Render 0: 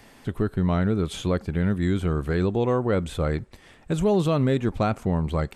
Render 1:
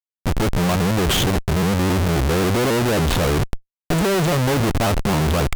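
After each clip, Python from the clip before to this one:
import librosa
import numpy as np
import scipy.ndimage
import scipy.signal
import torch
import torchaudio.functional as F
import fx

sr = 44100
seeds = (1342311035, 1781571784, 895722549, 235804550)

y = fx.spec_box(x, sr, start_s=0.75, length_s=1.41, low_hz=410.0, high_hz=2600.0, gain_db=-25)
y = fx.schmitt(y, sr, flips_db=-36.5)
y = fx.vibrato_shape(y, sr, shape='saw_up', rate_hz=3.7, depth_cents=160.0)
y = y * 10.0 ** (6.5 / 20.0)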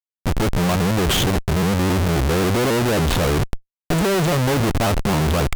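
y = x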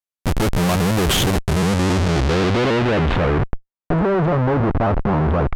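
y = fx.filter_sweep_lowpass(x, sr, from_hz=14000.0, to_hz=1300.0, start_s=1.29, end_s=3.7, q=0.96)
y = y * 10.0 ** (1.0 / 20.0)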